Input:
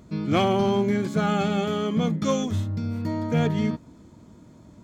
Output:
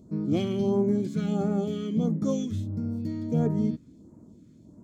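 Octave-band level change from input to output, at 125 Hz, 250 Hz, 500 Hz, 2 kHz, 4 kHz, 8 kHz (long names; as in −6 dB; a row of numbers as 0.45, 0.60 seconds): −3.0 dB, −1.5 dB, −4.0 dB, below −15 dB, −11.5 dB, can't be measured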